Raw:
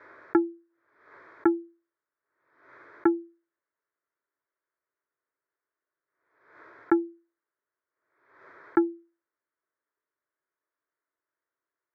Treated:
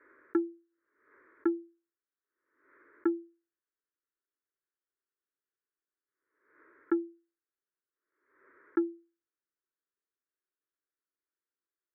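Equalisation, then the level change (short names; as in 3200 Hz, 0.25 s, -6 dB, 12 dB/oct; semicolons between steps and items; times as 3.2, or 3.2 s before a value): LPF 2000 Hz 24 dB/oct; dynamic EQ 950 Hz, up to +4 dB, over -45 dBFS, Q 2.6; fixed phaser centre 310 Hz, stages 4; -6.0 dB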